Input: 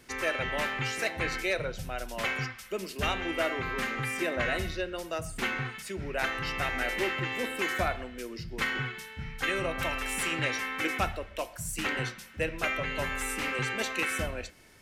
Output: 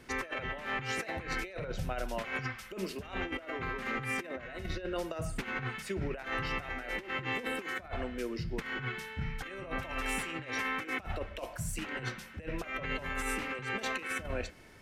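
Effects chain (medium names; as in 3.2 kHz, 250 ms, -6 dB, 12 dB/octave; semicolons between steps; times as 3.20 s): treble shelf 3.6 kHz -9.5 dB; compressor with a negative ratio -36 dBFS, ratio -0.5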